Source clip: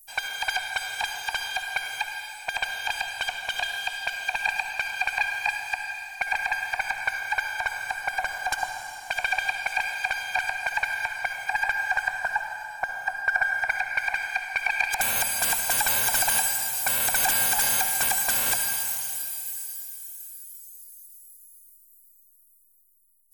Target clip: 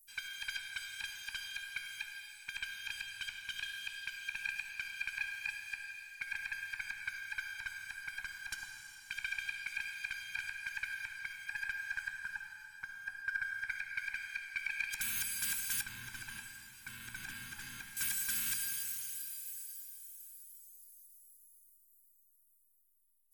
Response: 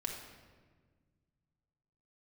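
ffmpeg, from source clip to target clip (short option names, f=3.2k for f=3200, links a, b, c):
-filter_complex "[0:a]asettb=1/sr,asplit=3[a][b][c];[a]atrim=end=15.814[d];[b]atrim=start=15.81:end=17.97,asetpts=PTS-STARTPTS,afade=t=in:d=0.004:c=qsin,afade=t=out:st=2.156:d=0.004:c=qsin,lowpass=f=1.3k:p=1[e];[c]atrim=start=17.966[f];[d][e]acrossfade=d=0.004:c1=hsin:c2=qsin[g];[g][f]acrossfade=d=0.004:c1=qsin:c2=hsin,flanger=delay=9.9:depth=7.9:regen=73:speed=0.15:shape=triangular,asuperstop=centerf=640:order=4:qfactor=0.54,volume=-7dB"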